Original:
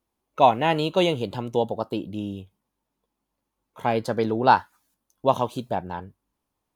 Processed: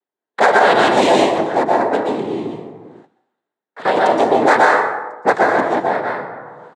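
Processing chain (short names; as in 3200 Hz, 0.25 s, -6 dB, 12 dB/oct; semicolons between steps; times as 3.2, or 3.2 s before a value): Wiener smoothing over 9 samples; noise vocoder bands 6; speakerphone echo 90 ms, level -22 dB; plate-style reverb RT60 0.88 s, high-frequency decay 0.55×, pre-delay 0.11 s, DRR -2 dB; in parallel at +3 dB: compressor, threshold -30 dBFS, peak gain reduction 19 dB; on the sum: gate with hold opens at -43 dBFS; reverse; upward compressor, threshold -29 dBFS; reverse; HPF 300 Hz 12 dB/oct; maximiser +6 dB; gain -1 dB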